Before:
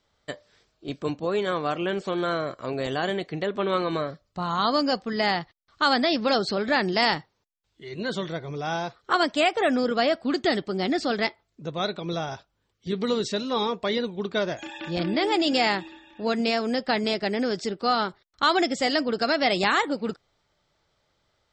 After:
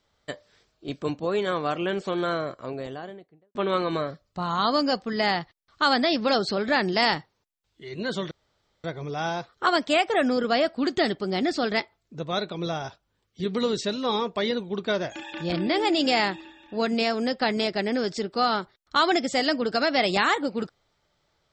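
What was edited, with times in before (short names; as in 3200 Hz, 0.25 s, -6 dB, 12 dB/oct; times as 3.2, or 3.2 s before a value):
2.2–3.55 studio fade out
8.31 insert room tone 0.53 s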